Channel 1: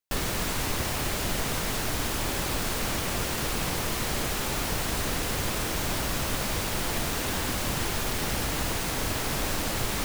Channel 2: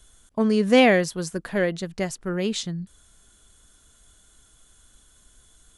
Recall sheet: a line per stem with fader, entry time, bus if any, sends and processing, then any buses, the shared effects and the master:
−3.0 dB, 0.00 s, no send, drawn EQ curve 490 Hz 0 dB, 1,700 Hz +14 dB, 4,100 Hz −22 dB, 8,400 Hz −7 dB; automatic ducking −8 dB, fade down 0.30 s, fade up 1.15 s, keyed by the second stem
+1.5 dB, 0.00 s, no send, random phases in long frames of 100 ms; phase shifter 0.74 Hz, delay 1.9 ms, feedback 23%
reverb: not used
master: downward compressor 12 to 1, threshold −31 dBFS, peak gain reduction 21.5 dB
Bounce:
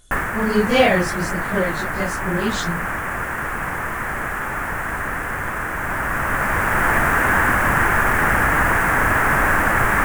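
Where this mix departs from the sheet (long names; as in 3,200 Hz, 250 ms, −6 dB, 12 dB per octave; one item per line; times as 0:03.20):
stem 1 −3.0 dB → +8.5 dB
master: missing downward compressor 12 to 1, threshold −31 dBFS, peak gain reduction 21.5 dB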